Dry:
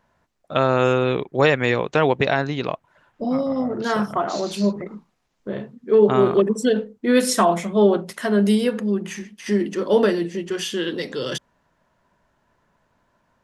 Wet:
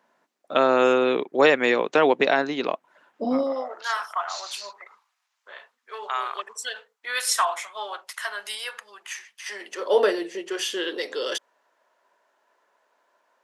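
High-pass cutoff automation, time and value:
high-pass 24 dB/octave
3.37 s 240 Hz
3.85 s 940 Hz
9.37 s 940 Hz
10.00 s 400 Hz

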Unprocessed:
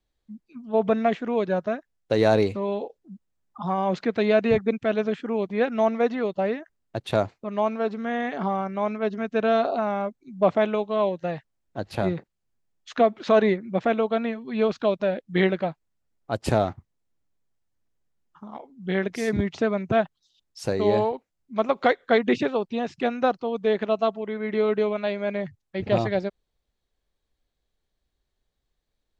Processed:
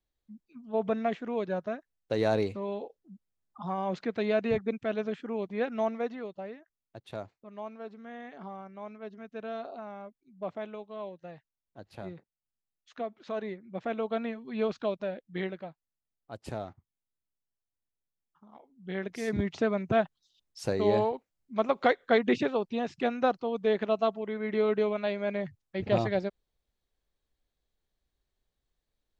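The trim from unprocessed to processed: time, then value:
5.82 s -7.5 dB
6.52 s -16.5 dB
13.50 s -16.5 dB
14.13 s -7 dB
14.74 s -7 dB
15.69 s -15.5 dB
18.45 s -15.5 dB
19.51 s -4 dB

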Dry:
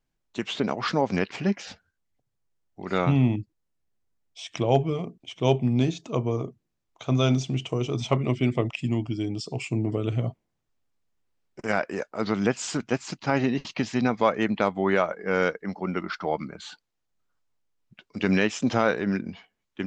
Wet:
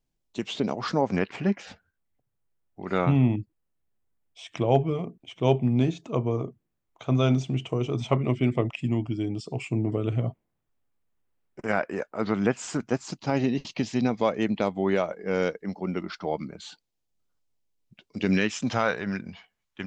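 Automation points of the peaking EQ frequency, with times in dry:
peaking EQ -8 dB 1.4 oct
0.66 s 1.5 kHz
1.24 s 5.3 kHz
12.51 s 5.3 kHz
13.38 s 1.4 kHz
18.18 s 1.4 kHz
18.77 s 310 Hz

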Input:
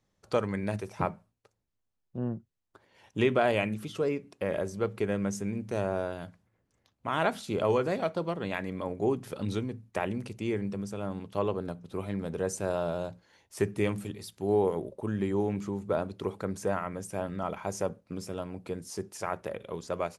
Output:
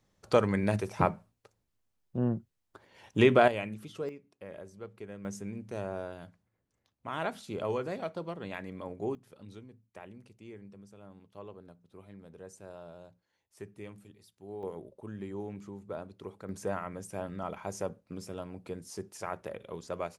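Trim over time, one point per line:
+3.5 dB
from 3.48 s -7 dB
from 4.09 s -14.5 dB
from 5.25 s -6.5 dB
from 9.15 s -17 dB
from 14.63 s -10.5 dB
from 16.49 s -4 dB

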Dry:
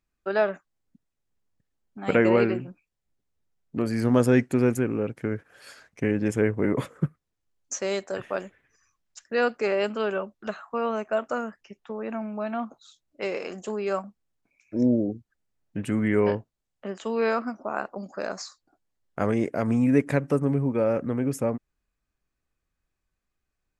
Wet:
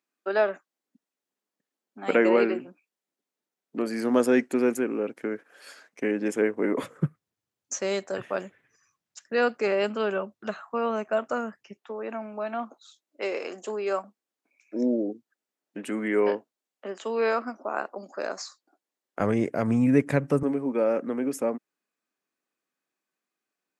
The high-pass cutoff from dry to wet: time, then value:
high-pass 24 dB/octave
240 Hz
from 6.83 s 100 Hz
from 11.77 s 260 Hz
from 19.20 s 89 Hz
from 20.43 s 230 Hz

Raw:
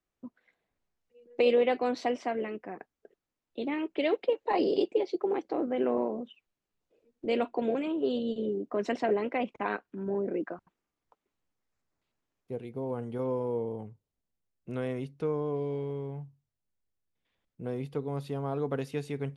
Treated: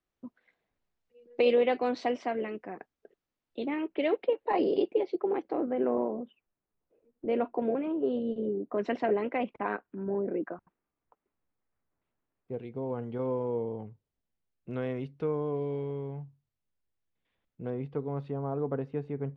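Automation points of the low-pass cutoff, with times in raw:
5.4 kHz
from 3.66 s 2.8 kHz
from 5.73 s 1.6 kHz
from 8.78 s 3.1 kHz
from 9.60 s 2 kHz
from 12.54 s 3.6 kHz
from 17.70 s 1.9 kHz
from 18.32 s 1.2 kHz

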